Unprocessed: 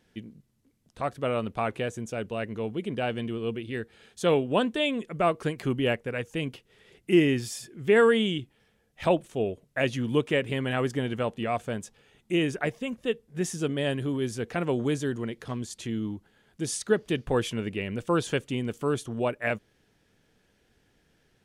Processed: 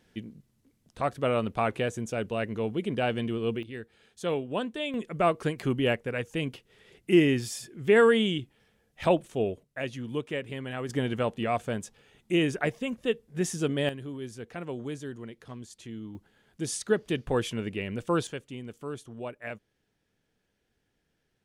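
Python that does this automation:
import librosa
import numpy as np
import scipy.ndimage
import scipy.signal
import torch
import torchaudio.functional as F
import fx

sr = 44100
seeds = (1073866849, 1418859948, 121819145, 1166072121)

y = fx.gain(x, sr, db=fx.steps((0.0, 1.5), (3.63, -6.5), (4.94, 0.0), (9.63, -7.5), (10.89, 0.5), (13.89, -9.0), (16.15, -1.5), (18.27, -10.0)))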